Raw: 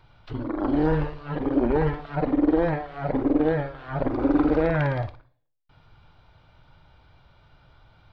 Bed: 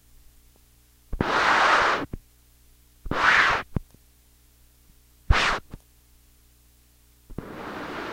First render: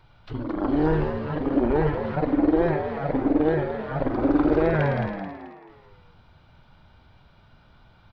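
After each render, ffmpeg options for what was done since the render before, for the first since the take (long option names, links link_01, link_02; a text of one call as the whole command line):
ffmpeg -i in.wav -filter_complex "[0:a]asplit=6[link_01][link_02][link_03][link_04][link_05][link_06];[link_02]adelay=217,afreqshift=72,volume=-8dB[link_07];[link_03]adelay=434,afreqshift=144,volume=-15.5dB[link_08];[link_04]adelay=651,afreqshift=216,volume=-23.1dB[link_09];[link_05]adelay=868,afreqshift=288,volume=-30.6dB[link_10];[link_06]adelay=1085,afreqshift=360,volume=-38.1dB[link_11];[link_01][link_07][link_08][link_09][link_10][link_11]amix=inputs=6:normalize=0" out.wav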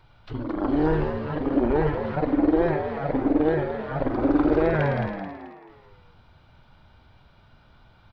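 ffmpeg -i in.wav -af "equalizer=frequency=170:width=3.6:gain=-2.5" out.wav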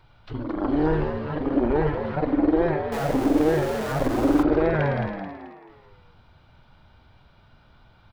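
ffmpeg -i in.wav -filter_complex "[0:a]asettb=1/sr,asplit=3[link_01][link_02][link_03];[link_01]atrim=end=2.924[link_04];[link_02]atrim=start=2.92:end=4.43,asetpts=PTS-STARTPTS,afade=type=in:duration=0.004:curve=qsin,afade=type=out:start_time=1.506:duration=0.004:curve=qsin,aeval=exprs='val(0)+0.5*0.0376*sgn(val(0))':channel_layout=same[link_05];[link_03]atrim=start=4.426[link_06];[link_04][link_05]acrossfade=duration=0.004:curve1=hsin:curve2=qsin[link_07];[link_07][link_06]acrossfade=duration=0.004:curve1=qsin:curve2=hsin" out.wav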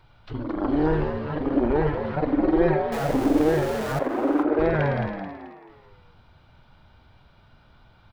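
ffmpeg -i in.wav -filter_complex "[0:a]asettb=1/sr,asplit=3[link_01][link_02][link_03];[link_01]atrim=end=2.404[link_04];[link_02]atrim=start=2.4:end=2.95,asetpts=PTS-STARTPTS,afade=type=in:duration=0.004:curve=qsin,afade=type=out:start_time=0.546:duration=0.004:curve=qsin,aecho=1:1:5.4:0.65,atrim=end_sample=24255[link_05];[link_03]atrim=start=2.946[link_06];[link_04][link_05]acrossfade=duration=0.004:curve1=hsin:curve2=qsin[link_07];[link_07][link_06]acrossfade=duration=0.004:curve1=qsin:curve2=hsin,asettb=1/sr,asplit=3[link_08][link_09][link_10];[link_08]atrim=end=3.994[link_11];[link_09]atrim=start=3.99:end=4.59,asetpts=PTS-STARTPTS,afade=type=in:duration=0.004:curve=qsin,afade=type=out:start_time=0.596:duration=0.004:curve=qsin,acrossover=split=240 2600:gain=0.0708 1 0.2[link_12][link_13][link_14];[link_12][link_13][link_14]amix=inputs=3:normalize=0[link_15];[link_10]atrim=start=4.586[link_16];[link_11][link_15]acrossfade=duration=0.004:curve1=hsin:curve2=qsin[link_17];[link_17][link_16]acrossfade=duration=0.004:curve1=qsin:curve2=hsin" out.wav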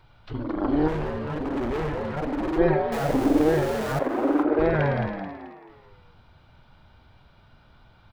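ffmpeg -i in.wav -filter_complex "[0:a]asplit=3[link_01][link_02][link_03];[link_01]afade=type=out:start_time=0.87:duration=0.02[link_04];[link_02]asoftclip=type=hard:threshold=-25dB,afade=type=in:start_time=0.87:duration=0.02,afade=type=out:start_time=2.57:duration=0.02[link_05];[link_03]afade=type=in:start_time=2.57:duration=0.02[link_06];[link_04][link_05][link_06]amix=inputs=3:normalize=0" out.wav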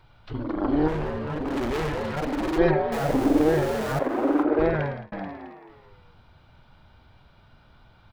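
ffmpeg -i in.wav -filter_complex "[0:a]asettb=1/sr,asplit=3[link_01][link_02][link_03];[link_01]atrim=end=1.484[link_04];[link_02]atrim=start=1.48:end=2.71,asetpts=PTS-STARTPTS,afade=type=in:duration=0.004:curve=qsin,afade=type=out:start_time=1.226:duration=0.004:curve=qsin,highshelf=frequency=2900:gain=11.5[link_05];[link_03]atrim=start=2.706[link_06];[link_04][link_05]acrossfade=duration=0.004:curve1=hsin:curve2=qsin[link_07];[link_07][link_06]acrossfade=duration=0.004:curve1=qsin:curve2=hsin,asplit=2[link_08][link_09];[link_08]atrim=end=5.12,asetpts=PTS-STARTPTS,afade=type=out:start_time=4.65:duration=0.47[link_10];[link_09]atrim=start=5.12,asetpts=PTS-STARTPTS,afade=type=in:duration=0.004:curve=hsin[link_11];[link_10][link_11]concat=n=2:v=0:a=1" out.wav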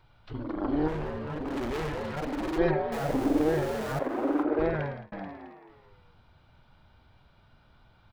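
ffmpeg -i in.wav -af "volume=-5dB" out.wav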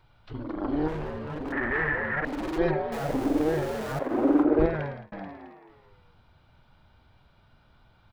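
ffmpeg -i in.wav -filter_complex "[0:a]asettb=1/sr,asplit=3[link_01][link_02][link_03];[link_01]atrim=end=1.524[link_04];[link_02]atrim=start=1.52:end=2.25,asetpts=PTS-STARTPTS,afade=type=in:duration=0.004:curve=qsin,afade=type=out:start_time=0.726:duration=0.004:curve=qsin,lowpass=frequency=1800:width_type=q:width=12[link_05];[link_03]atrim=start=2.246[link_06];[link_04][link_05]acrossfade=duration=0.004:curve1=hsin:curve2=qsin[link_07];[link_07][link_06]acrossfade=duration=0.004:curve1=qsin:curve2=hsin,asettb=1/sr,asplit=3[link_08][link_09][link_10];[link_08]atrim=end=4.114[link_11];[link_09]atrim=start=4.11:end=4.66,asetpts=PTS-STARTPTS,afade=type=in:duration=0.004:curve=qsin,afade=type=out:start_time=0.546:duration=0.004:curve=qsin,lowshelf=frequency=410:gain=10[link_12];[link_10]atrim=start=4.656[link_13];[link_11][link_12]acrossfade=duration=0.004:curve1=hsin:curve2=qsin[link_14];[link_14][link_13]acrossfade=duration=0.004:curve1=qsin:curve2=hsin" out.wav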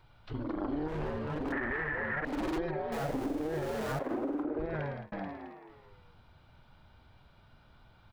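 ffmpeg -i in.wav -af "alimiter=limit=-19dB:level=0:latency=1:release=98,acompressor=threshold=-31dB:ratio=6" out.wav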